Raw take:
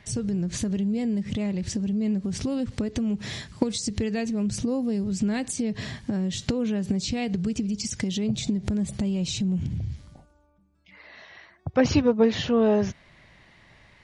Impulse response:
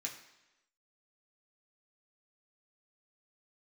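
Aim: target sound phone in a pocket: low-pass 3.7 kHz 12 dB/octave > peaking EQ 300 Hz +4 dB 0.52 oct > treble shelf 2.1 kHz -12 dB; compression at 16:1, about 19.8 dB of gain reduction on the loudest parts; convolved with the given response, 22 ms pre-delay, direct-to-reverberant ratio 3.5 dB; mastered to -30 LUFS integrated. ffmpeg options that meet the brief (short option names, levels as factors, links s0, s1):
-filter_complex "[0:a]acompressor=threshold=0.0178:ratio=16,asplit=2[s0][s1];[1:a]atrim=start_sample=2205,adelay=22[s2];[s1][s2]afir=irnorm=-1:irlink=0,volume=0.75[s3];[s0][s3]amix=inputs=2:normalize=0,lowpass=3700,equalizer=f=300:t=o:w=0.52:g=4,highshelf=f=2100:g=-12,volume=2.51"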